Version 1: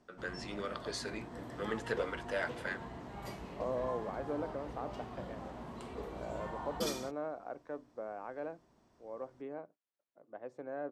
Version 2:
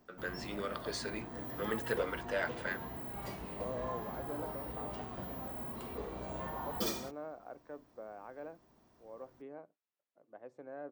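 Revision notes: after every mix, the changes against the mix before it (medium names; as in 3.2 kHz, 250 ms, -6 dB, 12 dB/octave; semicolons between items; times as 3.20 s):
second voice -6.0 dB; master: remove elliptic low-pass 12 kHz, stop band 40 dB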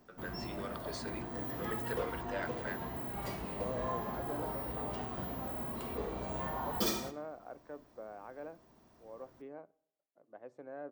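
first voice -5.5 dB; reverb: on, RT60 0.75 s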